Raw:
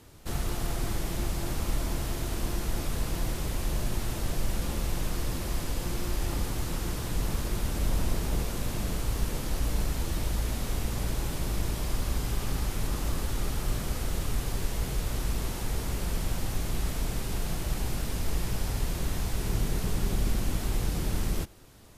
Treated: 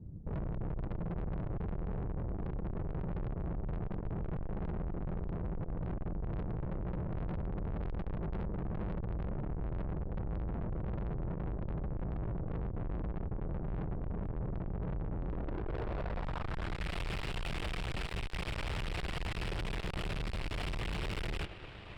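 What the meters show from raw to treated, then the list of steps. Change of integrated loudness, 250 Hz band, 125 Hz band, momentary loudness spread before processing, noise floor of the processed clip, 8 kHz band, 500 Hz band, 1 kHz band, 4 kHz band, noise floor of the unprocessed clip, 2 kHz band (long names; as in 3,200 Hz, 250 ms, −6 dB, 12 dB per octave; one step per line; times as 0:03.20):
−7.0 dB, −5.0 dB, −5.5 dB, 2 LU, −42 dBFS, below −20 dB, −4.5 dB, −5.5 dB, −9.0 dB, −35 dBFS, −5.0 dB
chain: low-pass filter sweep 190 Hz → 2,700 Hz, 0:15.16–0:16.96
tube saturation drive 44 dB, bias 0.65
thirty-one-band graphic EQ 250 Hz −8 dB, 6,300 Hz −9 dB, 12,500 Hz −7 dB
level +9.5 dB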